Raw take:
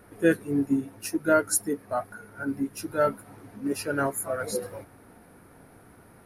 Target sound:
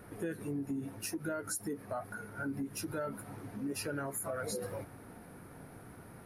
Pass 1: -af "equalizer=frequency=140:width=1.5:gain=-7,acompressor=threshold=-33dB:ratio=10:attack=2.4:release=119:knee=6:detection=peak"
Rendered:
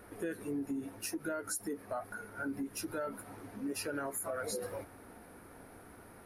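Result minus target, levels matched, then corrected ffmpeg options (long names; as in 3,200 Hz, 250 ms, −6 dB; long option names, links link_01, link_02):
125 Hz band −7.5 dB
-af "equalizer=frequency=140:width=1.5:gain=4.5,acompressor=threshold=-33dB:ratio=10:attack=2.4:release=119:knee=6:detection=peak"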